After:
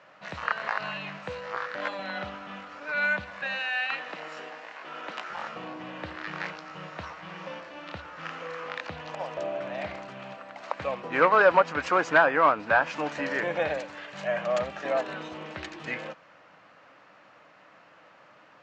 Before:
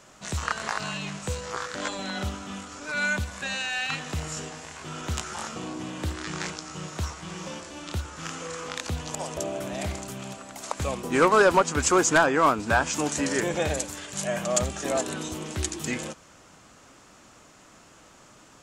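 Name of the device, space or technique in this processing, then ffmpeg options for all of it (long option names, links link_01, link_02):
kitchen radio: -filter_complex "[0:a]asettb=1/sr,asplit=3[link_01][link_02][link_03];[link_01]atrim=end=3.594[link_04];[link_02]atrim=start=3.59:end=5.3,asetpts=PTS-STARTPTS,afade=type=in:duration=0.004:curve=qsin,afade=type=out:start_time=1.706:duration=0.004:curve=qsin,highpass=frequency=230:width=0.5412,highpass=frequency=230:width=1.3066[link_05];[link_03]atrim=start=5.296[link_06];[link_04][link_05]acrossfade=duration=0.004:curve1=hsin:curve2=qsin[link_07];[link_07][link_06]acrossfade=duration=0.004:curve1=qsin:curve2=hsin,highpass=220,equalizer=frequency=240:width_type=q:width=4:gain=-10,equalizer=frequency=380:width_type=q:width=4:gain=-10,equalizer=frequency=560:width_type=q:width=4:gain=3,equalizer=frequency=1800:width_type=q:width=4:gain=3,equalizer=frequency=3400:width_type=q:width=4:gain=-6,lowpass=frequency=3600:width=0.5412,lowpass=frequency=3600:width=1.3066"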